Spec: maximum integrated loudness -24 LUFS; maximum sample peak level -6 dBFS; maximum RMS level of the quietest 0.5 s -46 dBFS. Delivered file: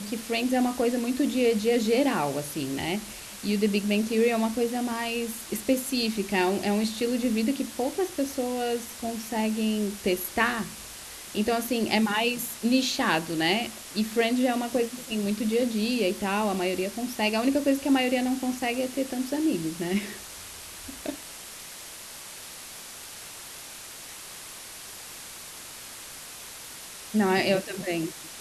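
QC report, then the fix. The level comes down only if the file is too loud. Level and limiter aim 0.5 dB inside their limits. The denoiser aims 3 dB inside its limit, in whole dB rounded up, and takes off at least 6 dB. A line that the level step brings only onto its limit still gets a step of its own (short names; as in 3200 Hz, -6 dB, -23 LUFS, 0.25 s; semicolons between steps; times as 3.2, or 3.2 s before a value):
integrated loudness -27.0 LUFS: OK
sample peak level -10.0 dBFS: OK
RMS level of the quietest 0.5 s -42 dBFS: fail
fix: denoiser 7 dB, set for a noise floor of -42 dBFS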